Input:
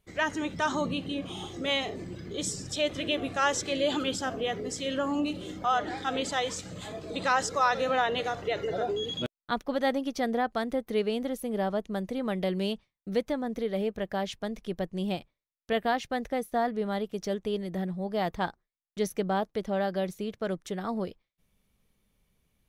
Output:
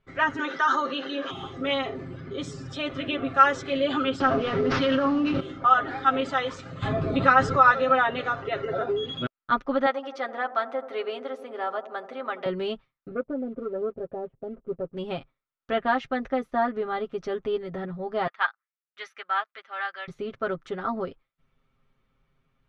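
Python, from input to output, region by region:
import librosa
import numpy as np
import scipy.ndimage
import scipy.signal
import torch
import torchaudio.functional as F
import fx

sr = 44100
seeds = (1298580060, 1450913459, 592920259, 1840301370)

y = fx.chain(x, sr, fx.cabinet(low_hz=390.0, low_slope=24, high_hz=6600.0, hz=(430.0, 700.0, 1100.0, 1600.0, 2400.0, 6200.0), db=(-6, -10, -6, 7, -9, 7)),
    fx.env_flatten(amount_pct=50), at=(0.39, 1.31))
y = fx.chain(y, sr, fx.cvsd(bps=32000),
    fx.backlash(play_db=-50.0),
    fx.env_flatten(amount_pct=100), at=(4.2, 5.4))
y = fx.chain(y, sr, fx.bass_treble(bass_db=10, treble_db=-4),
    fx.env_flatten(amount_pct=50), at=(6.82, 7.71))
y = fx.chain(y, sr, fx.highpass(hz=600.0, slope=12),
    fx.echo_wet_lowpass(ms=84, feedback_pct=73, hz=840.0, wet_db=-12), at=(9.86, 12.46))
y = fx.chain(y, sr, fx.cheby1_lowpass(hz=530.0, order=3),
    fx.tilt_eq(slope=2.5),
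    fx.leveller(passes=1), at=(13.11, 14.97))
y = fx.chain(y, sr, fx.highpass(hz=1200.0, slope=12),
    fx.peak_eq(hz=2100.0, db=9.0, octaves=2.1),
    fx.upward_expand(threshold_db=-52.0, expansion=1.5), at=(18.27, 20.08))
y = scipy.signal.sosfilt(scipy.signal.butter(2, 2900.0, 'lowpass', fs=sr, output='sos'), y)
y = fx.peak_eq(y, sr, hz=1300.0, db=11.0, octaves=0.39)
y = y + 0.81 * np.pad(y, (int(7.5 * sr / 1000.0), 0))[:len(y)]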